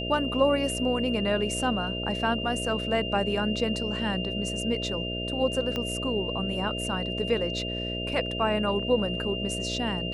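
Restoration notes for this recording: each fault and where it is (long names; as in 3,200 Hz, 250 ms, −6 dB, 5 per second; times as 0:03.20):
mains buzz 60 Hz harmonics 11 −34 dBFS
whistle 2,800 Hz −33 dBFS
0:05.76: click −17 dBFS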